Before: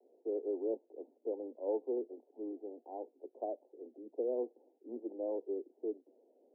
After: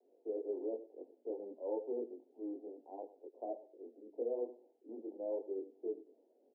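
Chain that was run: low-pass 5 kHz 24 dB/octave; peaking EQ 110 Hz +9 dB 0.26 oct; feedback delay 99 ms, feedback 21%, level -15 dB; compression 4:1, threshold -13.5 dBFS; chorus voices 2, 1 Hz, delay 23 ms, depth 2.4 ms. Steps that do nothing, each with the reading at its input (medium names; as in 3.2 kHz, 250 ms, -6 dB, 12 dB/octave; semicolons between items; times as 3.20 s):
low-pass 5 kHz: input has nothing above 910 Hz; peaking EQ 110 Hz: input has nothing below 200 Hz; compression, threshold -13.5 dBFS: peak at its input -25.0 dBFS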